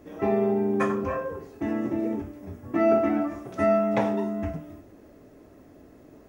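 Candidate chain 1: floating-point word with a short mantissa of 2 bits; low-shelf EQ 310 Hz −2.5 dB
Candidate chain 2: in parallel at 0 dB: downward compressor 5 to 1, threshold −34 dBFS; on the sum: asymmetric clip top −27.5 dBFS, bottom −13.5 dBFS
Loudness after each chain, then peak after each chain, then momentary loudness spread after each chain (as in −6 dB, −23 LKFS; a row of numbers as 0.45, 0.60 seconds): −27.0, −27.0 LKFS; −12.0, −14.0 dBFS; 13, 22 LU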